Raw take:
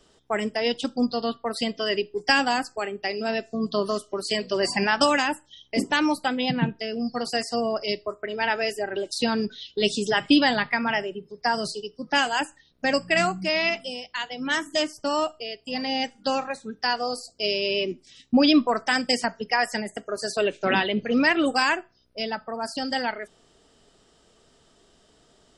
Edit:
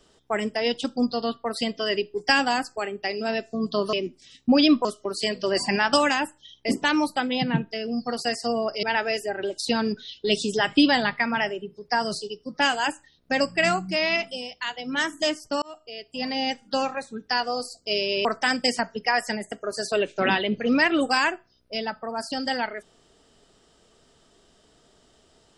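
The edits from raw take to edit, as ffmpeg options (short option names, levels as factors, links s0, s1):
-filter_complex "[0:a]asplit=6[s0][s1][s2][s3][s4][s5];[s0]atrim=end=3.932[s6];[s1]atrim=start=17.778:end=18.702[s7];[s2]atrim=start=3.928:end=7.912[s8];[s3]atrim=start=8.358:end=15.15,asetpts=PTS-STARTPTS,afade=t=out:st=6.788:d=0.004:c=hsin[s9];[s4]atrim=start=15.15:end=17.782,asetpts=PTS-STARTPTS,afade=t=in:d=0.52[s10];[s5]atrim=start=18.698[s11];[s6][s7]acrossfade=d=0.004:c1=hsin:c2=hsin[s12];[s12][s8]acrossfade=d=0.004:c1=hsin:c2=hsin[s13];[s9][s10]concat=n=2:v=0:a=1[s14];[s13][s14]acrossfade=d=0.004:c1=hsin:c2=hsin[s15];[s15][s11]acrossfade=d=0.004:c1=hsin:c2=hsin"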